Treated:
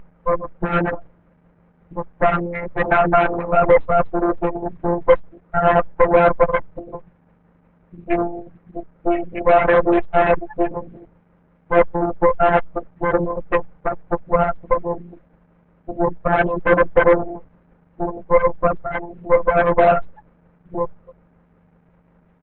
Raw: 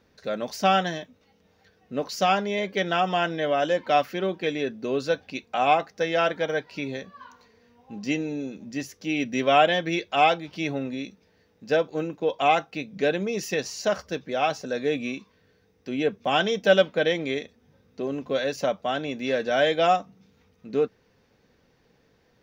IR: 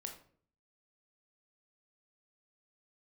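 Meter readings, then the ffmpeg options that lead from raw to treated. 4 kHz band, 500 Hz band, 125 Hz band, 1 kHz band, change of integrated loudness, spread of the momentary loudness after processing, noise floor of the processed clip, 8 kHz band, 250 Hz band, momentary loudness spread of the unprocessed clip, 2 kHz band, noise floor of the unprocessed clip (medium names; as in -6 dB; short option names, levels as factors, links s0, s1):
under -10 dB, +7.5 dB, +8.5 dB, +5.5 dB, +6.5 dB, 17 LU, -57 dBFS, under -40 dB, +5.0 dB, 12 LU, +4.0 dB, -64 dBFS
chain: -filter_complex "[0:a]aeval=exprs='val(0)+0.0178*(sin(2*PI*50*n/s)+sin(2*PI*2*50*n/s)/2+sin(2*PI*3*50*n/s)/3+sin(2*PI*4*50*n/s)/4+sin(2*PI*5*50*n/s)/5)':c=same,aresample=16000,asoftclip=type=tanh:threshold=0.126,aresample=44100,acontrast=79,asplit=2[s0][s1];[s1]asplit=3[s2][s3][s4];[s2]adelay=277,afreqshift=100,volume=0.141[s5];[s3]adelay=554,afreqshift=200,volume=0.055[s6];[s4]adelay=831,afreqshift=300,volume=0.0214[s7];[s5][s6][s7]amix=inputs=3:normalize=0[s8];[s0][s8]amix=inputs=2:normalize=0,adynamicsmooth=sensitivity=4:basefreq=700,afftfilt=real='re*gte(hypot(re,im),0.316)':imag='im*gte(hypot(re,im),0.316)':win_size=1024:overlap=0.75,afftfilt=real='hypot(re,im)*cos(PI*b)':imag='0':win_size=1024:overlap=0.75,aeval=exprs='0.355*(cos(1*acos(clip(val(0)/0.355,-1,1)))-cos(1*PI/2))+0.0891*(cos(8*acos(clip(val(0)/0.355,-1,1)))-cos(8*PI/2))':c=same,acrusher=bits=9:mix=0:aa=0.000001,adynamicequalizer=threshold=0.0224:dfrequency=480:dqfactor=1.7:tfrequency=480:tqfactor=1.7:attack=5:release=100:ratio=0.375:range=1.5:mode=boostabove:tftype=bell,lowpass=f=2100:w=0.5412,lowpass=f=2100:w=1.3066,volume=2" -ar 48000 -c:a libopus -b:a 8k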